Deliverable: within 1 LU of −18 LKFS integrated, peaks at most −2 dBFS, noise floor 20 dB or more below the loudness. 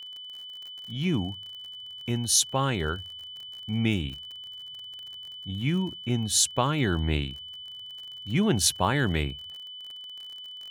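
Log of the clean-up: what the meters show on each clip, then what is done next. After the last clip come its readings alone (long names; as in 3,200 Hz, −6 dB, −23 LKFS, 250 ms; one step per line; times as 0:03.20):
crackle rate 40 per second; interfering tone 3,000 Hz; level of the tone −39 dBFS; integrated loudness −27.0 LKFS; sample peak −9.0 dBFS; target loudness −18.0 LKFS
→ click removal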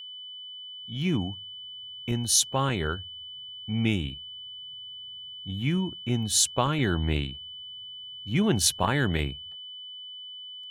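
crackle rate 0.56 per second; interfering tone 3,000 Hz; level of the tone −39 dBFS
→ notch filter 3,000 Hz, Q 30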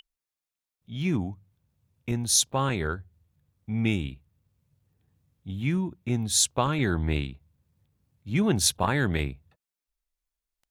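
interfering tone none found; integrated loudness −26.5 LKFS; sample peak −9.5 dBFS; target loudness −18.0 LKFS
→ level +8.5 dB
brickwall limiter −2 dBFS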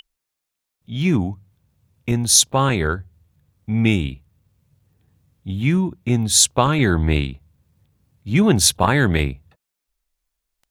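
integrated loudness −18.0 LKFS; sample peak −2.0 dBFS; background noise floor −82 dBFS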